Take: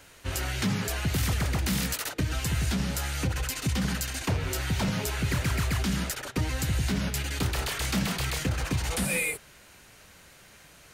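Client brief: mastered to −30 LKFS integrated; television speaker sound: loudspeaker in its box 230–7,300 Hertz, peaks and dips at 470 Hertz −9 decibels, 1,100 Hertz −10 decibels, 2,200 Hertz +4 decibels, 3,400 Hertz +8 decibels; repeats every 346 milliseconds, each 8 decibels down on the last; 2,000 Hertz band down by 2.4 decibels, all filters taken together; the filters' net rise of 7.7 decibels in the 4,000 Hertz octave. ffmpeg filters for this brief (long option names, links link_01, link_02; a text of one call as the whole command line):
ffmpeg -i in.wav -af "highpass=frequency=230:width=0.5412,highpass=frequency=230:width=1.3066,equalizer=frequency=470:width_type=q:width=4:gain=-9,equalizer=frequency=1100:width_type=q:width=4:gain=-10,equalizer=frequency=2200:width_type=q:width=4:gain=4,equalizer=frequency=3400:width_type=q:width=4:gain=8,lowpass=frequency=7300:width=0.5412,lowpass=frequency=7300:width=1.3066,equalizer=frequency=2000:width_type=o:gain=-8,equalizer=frequency=4000:width_type=o:gain=7,aecho=1:1:346|692|1038|1384|1730:0.398|0.159|0.0637|0.0255|0.0102,volume=-1dB" out.wav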